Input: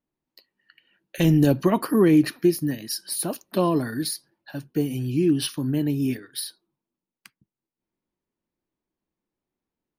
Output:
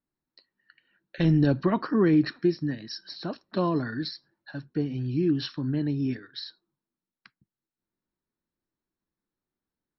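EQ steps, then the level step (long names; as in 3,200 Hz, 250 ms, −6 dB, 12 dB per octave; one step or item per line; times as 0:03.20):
Chebyshev low-pass with heavy ripple 5,600 Hz, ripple 9 dB
low-shelf EQ 370 Hz +7.5 dB
0.0 dB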